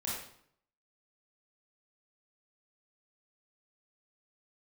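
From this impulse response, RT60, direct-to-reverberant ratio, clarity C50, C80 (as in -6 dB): 0.65 s, -6.5 dB, -0.5 dB, 4.5 dB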